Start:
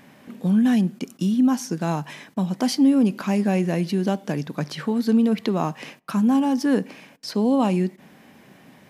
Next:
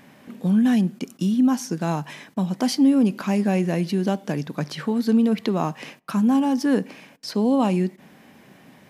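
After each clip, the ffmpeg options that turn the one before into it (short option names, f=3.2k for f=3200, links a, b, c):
-af anull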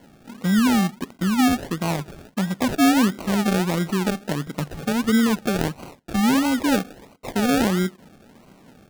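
-af "acrusher=samples=35:mix=1:aa=0.000001:lfo=1:lforange=21:lforate=1.5"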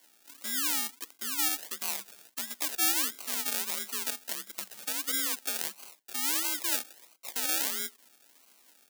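-af "aderivative,afreqshift=48,volume=2dB"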